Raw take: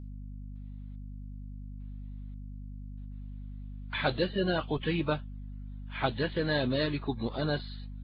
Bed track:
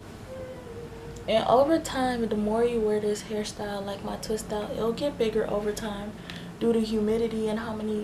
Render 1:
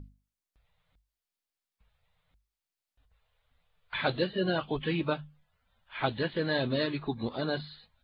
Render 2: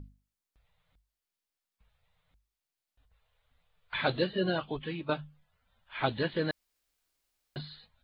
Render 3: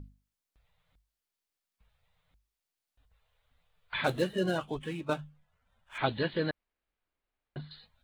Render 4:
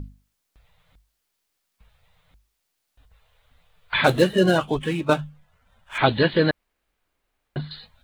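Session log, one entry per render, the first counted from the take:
hum notches 50/100/150/200/250 Hz
4.39–5.09 s: fade out, to -11 dB; 6.51–7.56 s: room tone
4.04–5.98 s: median filter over 9 samples; 6.50–7.71 s: distance through air 450 m
trim +12 dB; peak limiter -3 dBFS, peak gain reduction 1.5 dB

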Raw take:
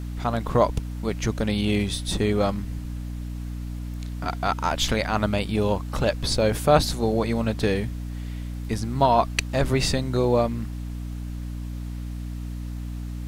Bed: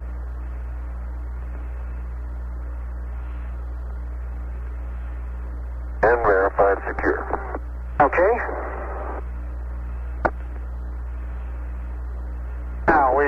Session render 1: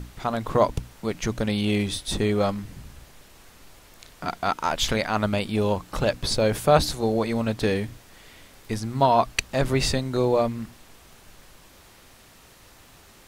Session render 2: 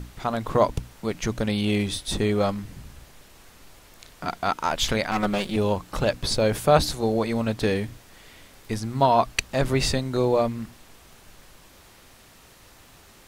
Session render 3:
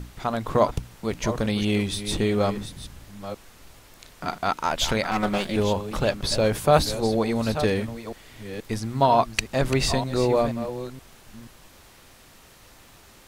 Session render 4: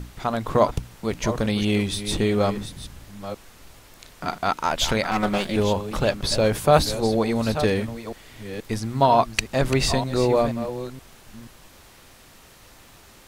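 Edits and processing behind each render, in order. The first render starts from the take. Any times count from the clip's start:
hum notches 60/120/180/240/300 Hz
5.11–5.56 s: comb filter that takes the minimum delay 5.4 ms
chunks repeated in reverse 478 ms, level -11 dB
trim +1.5 dB

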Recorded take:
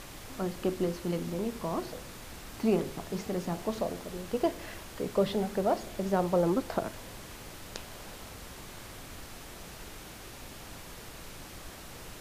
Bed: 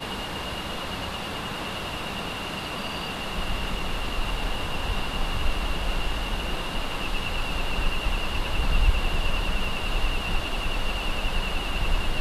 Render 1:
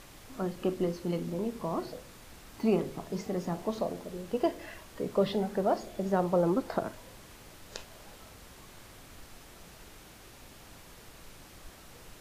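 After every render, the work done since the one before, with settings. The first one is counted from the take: noise print and reduce 6 dB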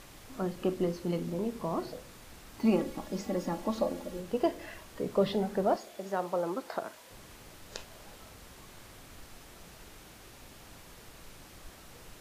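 2.64–4.20 s: comb 3.6 ms, depth 69%; 5.76–7.11 s: high-pass 730 Hz 6 dB/octave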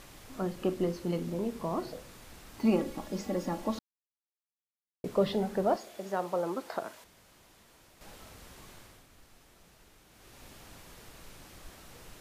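3.79–5.04 s: mute; 7.04–8.01 s: room tone; 8.70–10.46 s: dip -8.5 dB, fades 0.37 s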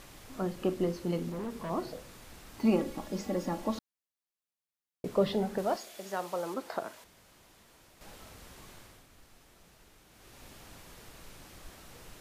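1.29–1.70 s: hard clipper -34 dBFS; 5.58–6.54 s: tilt shelf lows -5 dB, about 1.4 kHz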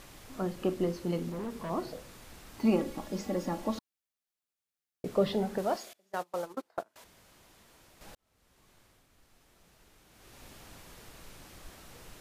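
3.65–5.26 s: band-stop 1 kHz; 5.93–6.96 s: gate -36 dBFS, range -27 dB; 8.15–10.35 s: fade in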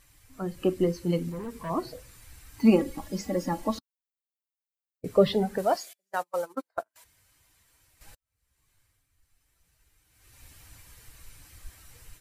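expander on every frequency bin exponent 1.5; level rider gain up to 8 dB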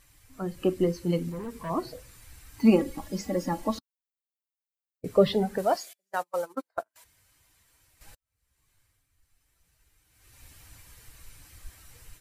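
no audible change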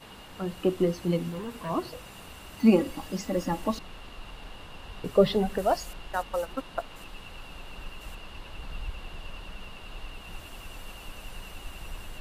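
add bed -15.5 dB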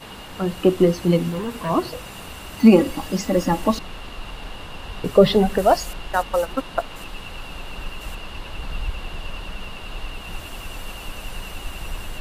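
trim +9 dB; peak limiter -2 dBFS, peak gain reduction 2.5 dB

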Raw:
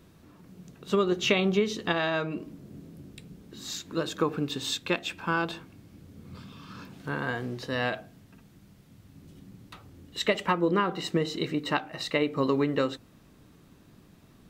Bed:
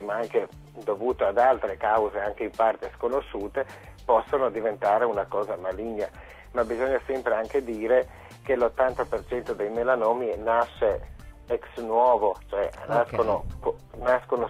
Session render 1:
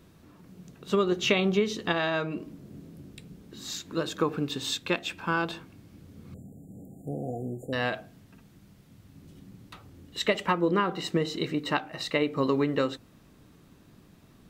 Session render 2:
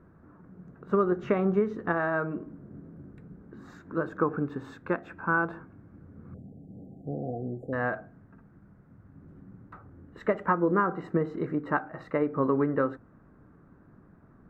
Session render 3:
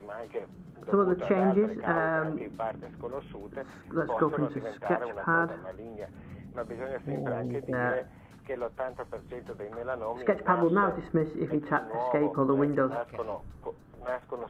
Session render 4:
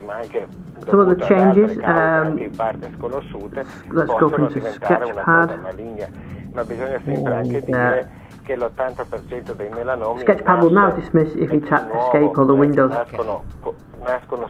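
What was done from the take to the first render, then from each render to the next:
6.34–7.73 s: brick-wall FIR band-stop 820–6800 Hz
FFT filter 960 Hz 0 dB, 1.5 kHz +4 dB, 3.2 kHz -29 dB
add bed -11.5 dB
trim +12 dB; peak limiter -1 dBFS, peak gain reduction 2.5 dB

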